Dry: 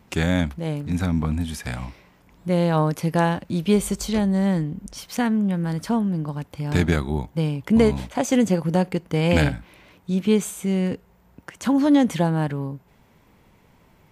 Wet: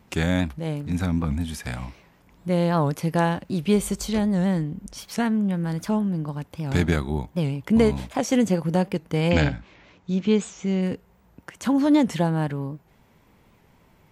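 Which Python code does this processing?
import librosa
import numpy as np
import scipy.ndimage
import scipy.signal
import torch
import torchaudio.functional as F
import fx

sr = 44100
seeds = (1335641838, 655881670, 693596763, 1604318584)

y = fx.steep_lowpass(x, sr, hz=7400.0, slope=96, at=(9.29, 10.81), fade=0.02)
y = fx.record_warp(y, sr, rpm=78.0, depth_cents=160.0)
y = y * librosa.db_to_amplitude(-1.5)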